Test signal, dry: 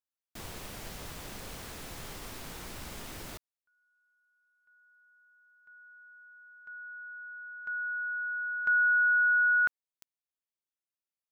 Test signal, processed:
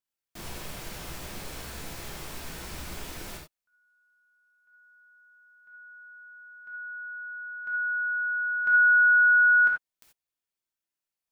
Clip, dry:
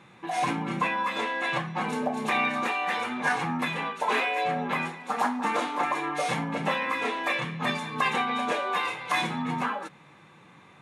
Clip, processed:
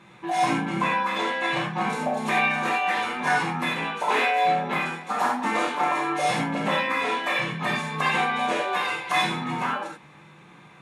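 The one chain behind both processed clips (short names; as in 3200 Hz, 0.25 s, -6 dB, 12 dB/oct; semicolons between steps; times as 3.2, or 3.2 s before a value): non-linear reverb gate 0.11 s flat, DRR -1 dB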